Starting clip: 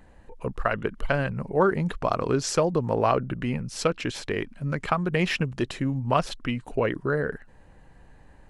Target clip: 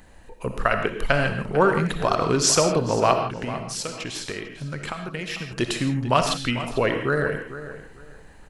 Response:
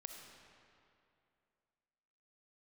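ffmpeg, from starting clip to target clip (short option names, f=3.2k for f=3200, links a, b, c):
-filter_complex "[0:a]highshelf=f=2.5k:g=11,asettb=1/sr,asplit=3[a][b][c];[a]atrim=end=3.134[d];[b]atrim=start=3.13:end=5.51,asetpts=PTS-STARTPTS,afade=t=in:d=0.004:c=qsin,afade=t=out:st=2.376:d=0.004:c=qsin,acompressor=threshold=-31dB:ratio=6[e];[c]atrim=start=5.506[f];[d][e]acrossfade=d=0.004:c1=hsin:c2=qsin[g];[g][f]acrossfade=d=0.004:c1=qsin:c2=hsin,asplit=2[h][i];[i]adelay=447,lowpass=f=3.7k:p=1,volume=-13dB,asplit=2[j][k];[k]adelay=447,lowpass=f=3.7k:p=1,volume=0.24,asplit=2[l][m];[m]adelay=447,lowpass=f=3.7k:p=1,volume=0.24[n];[h][j][l][n]amix=inputs=4:normalize=0[o];[1:a]atrim=start_sample=2205,afade=t=out:st=0.22:d=0.01,atrim=end_sample=10143[p];[o][p]afir=irnorm=-1:irlink=0,volume=7.5dB"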